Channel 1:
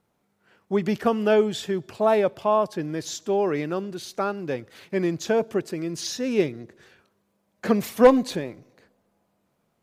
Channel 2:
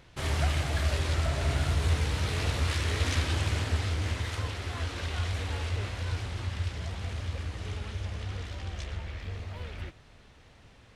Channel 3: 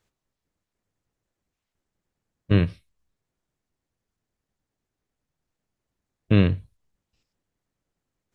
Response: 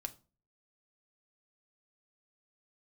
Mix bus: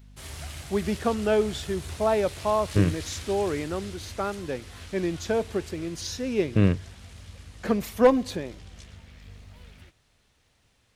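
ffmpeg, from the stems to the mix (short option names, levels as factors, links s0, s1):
-filter_complex "[0:a]aeval=exprs='val(0)+0.00562*(sin(2*PI*50*n/s)+sin(2*PI*2*50*n/s)/2+sin(2*PI*3*50*n/s)/3+sin(2*PI*4*50*n/s)/4+sin(2*PI*5*50*n/s)/5)':c=same,volume=0.668,asplit=2[s0][s1];[1:a]aemphasis=mode=production:type=75kf,volume=0.237[s2];[2:a]lowpass=2400,adelay=250,volume=0.75[s3];[s1]apad=whole_len=378896[s4];[s3][s4]sidechaingate=range=0.0224:threshold=0.00447:ratio=16:detection=peak[s5];[s0][s2][s5]amix=inputs=3:normalize=0"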